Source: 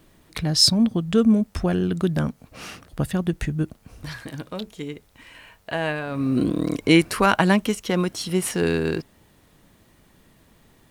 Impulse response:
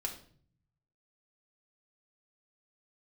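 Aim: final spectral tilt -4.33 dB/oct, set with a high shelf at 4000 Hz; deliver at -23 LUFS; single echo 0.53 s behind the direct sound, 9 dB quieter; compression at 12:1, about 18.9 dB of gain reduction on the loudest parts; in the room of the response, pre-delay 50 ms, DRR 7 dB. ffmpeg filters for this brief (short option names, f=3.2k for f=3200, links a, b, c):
-filter_complex "[0:a]highshelf=f=4k:g=9,acompressor=threshold=-25dB:ratio=12,aecho=1:1:530:0.355,asplit=2[a][b];[1:a]atrim=start_sample=2205,adelay=50[c];[b][c]afir=irnorm=-1:irlink=0,volume=-8dB[d];[a][d]amix=inputs=2:normalize=0,volume=6.5dB"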